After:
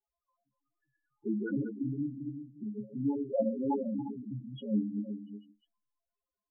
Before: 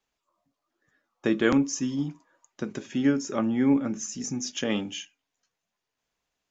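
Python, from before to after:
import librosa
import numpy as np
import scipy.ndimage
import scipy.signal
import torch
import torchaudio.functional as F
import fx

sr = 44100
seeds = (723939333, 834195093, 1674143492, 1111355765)

p1 = fx.reverse_delay(x, sr, ms=143, wet_db=-5)
p2 = np.clip(10.0 ** (20.5 / 20.0) * p1, -1.0, 1.0) / 10.0 ** (20.5 / 20.0)
p3 = p1 + F.gain(torch.from_numpy(p2), -6.5).numpy()
p4 = scipy.signal.sosfilt(scipy.signal.butter(2, 3100.0, 'lowpass', fs=sr, output='sos'), p3)
p5 = fx.peak_eq(p4, sr, hz=1900.0, db=-7.0, octaves=0.41)
p6 = fx.stiff_resonator(p5, sr, f0_hz=62.0, decay_s=0.32, stiffness=0.03)
p7 = p6 + fx.echo_single(p6, sr, ms=360, db=-9.5, dry=0)
p8 = fx.spec_box(p7, sr, start_s=2.79, length_s=1.29, low_hz=460.0, high_hz=1600.0, gain_db=9)
p9 = fx.env_lowpass_down(p8, sr, base_hz=1200.0, full_db=-24.5)
y = fx.spec_topn(p9, sr, count=4)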